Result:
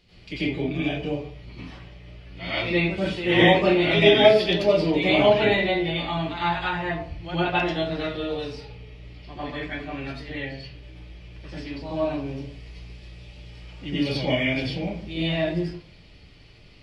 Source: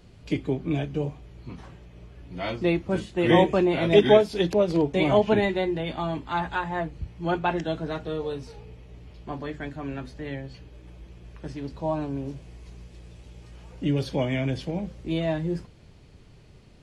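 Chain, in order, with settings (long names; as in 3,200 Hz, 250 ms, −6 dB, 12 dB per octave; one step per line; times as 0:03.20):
flat-topped bell 3,200 Hz +11 dB
convolution reverb RT60 0.55 s, pre-delay 84 ms, DRR −10.5 dB
level −10.5 dB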